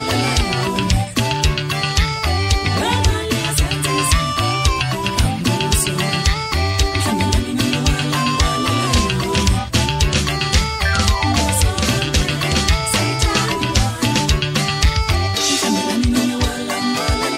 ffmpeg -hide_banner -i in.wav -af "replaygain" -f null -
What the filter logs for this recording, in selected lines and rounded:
track_gain = -0.5 dB
track_peak = 0.417